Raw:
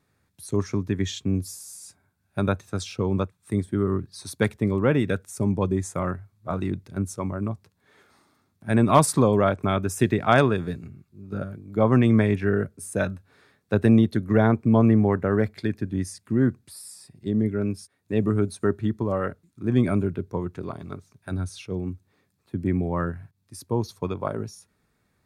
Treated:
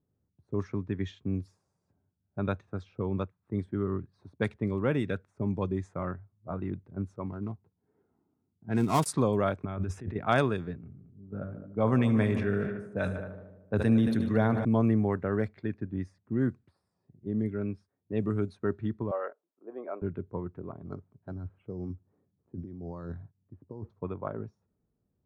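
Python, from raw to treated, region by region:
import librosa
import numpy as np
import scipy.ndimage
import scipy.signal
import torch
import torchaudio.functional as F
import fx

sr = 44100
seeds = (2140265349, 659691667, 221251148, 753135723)

y = fx.chain(x, sr, fx.dead_time(dead_ms=0.088),
    fx.notch_comb(f0_hz=580.0), at=(7.26, 9.06))
y = fx.chain(y, sr, fx.low_shelf(hz=120.0, db=9.5),
    fx.over_compress(threshold_db=-27.0, ratio=-1.0), at=(9.65, 10.16))
y = fx.chain(y, sr, fx.notch(hz=350.0, q=11.0),
    fx.echo_heads(ms=75, heads='all three', feedback_pct=52, wet_db=-17.5),
    fx.sustainer(db_per_s=45.0), at=(10.78, 14.65))
y = fx.chain(y, sr, fx.highpass(hz=540.0, slope=24),
    fx.tilt_shelf(db=7.0, hz=1200.0), at=(19.11, 20.02))
y = fx.chain(y, sr, fx.highpass(hz=43.0, slope=6),
    fx.over_compress(threshold_db=-31.0, ratio=-1.0),
    fx.resample_bad(factor=8, down='filtered', up='hold'), at=(20.84, 23.9))
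y = fx.env_lowpass(y, sr, base_hz=490.0, full_db=-15.0)
y = fx.high_shelf(y, sr, hz=11000.0, db=3.0)
y = y * librosa.db_to_amplitude(-7.0)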